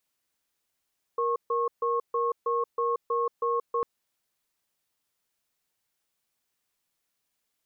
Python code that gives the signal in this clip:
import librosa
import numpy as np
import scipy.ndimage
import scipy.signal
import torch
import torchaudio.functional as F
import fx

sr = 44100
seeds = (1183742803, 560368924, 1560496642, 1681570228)

y = fx.cadence(sr, length_s=2.65, low_hz=470.0, high_hz=1090.0, on_s=0.18, off_s=0.14, level_db=-26.5)